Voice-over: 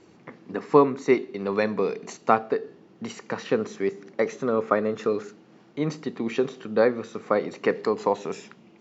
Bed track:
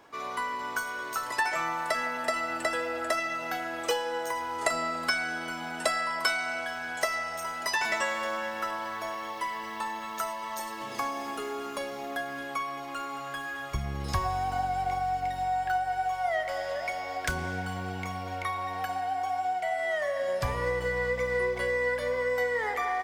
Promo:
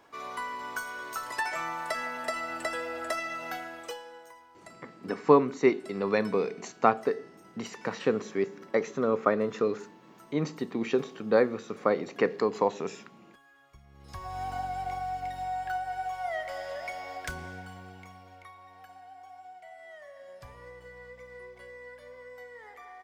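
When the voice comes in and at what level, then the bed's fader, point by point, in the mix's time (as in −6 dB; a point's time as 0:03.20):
4.55 s, −2.5 dB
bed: 0:03.54 −3.5 dB
0:04.52 −23.5 dB
0:13.87 −23.5 dB
0:14.42 −4.5 dB
0:17.08 −4.5 dB
0:18.56 −18.5 dB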